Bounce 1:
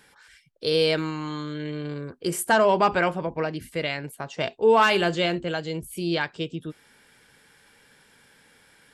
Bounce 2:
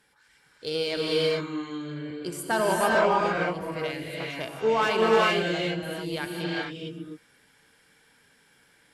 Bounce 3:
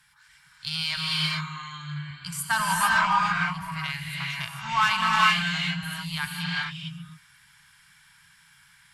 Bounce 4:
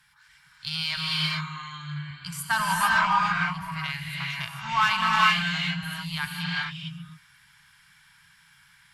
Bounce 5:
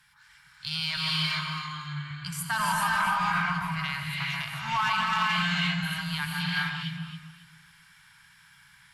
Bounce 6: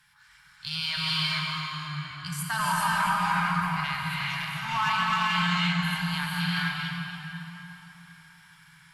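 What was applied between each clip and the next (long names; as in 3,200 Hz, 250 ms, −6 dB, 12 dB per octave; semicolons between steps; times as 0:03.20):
harmonic generator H 7 −29 dB, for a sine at −8 dBFS; reverb whose tail is shaped and stops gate 470 ms rising, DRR −3.5 dB; level −6.5 dB
Chebyshev band-stop filter 160–1,000 Hz, order 3; level +5.5 dB
parametric band 8,600 Hz −4.5 dB 0.81 octaves
brickwall limiter −18.5 dBFS, peak gain reduction 11 dB; on a send: delay that swaps between a low-pass and a high-pass 137 ms, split 1,800 Hz, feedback 52%, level −4 dB
dense smooth reverb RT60 4 s, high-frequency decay 0.65×, DRR 2.5 dB; level −1 dB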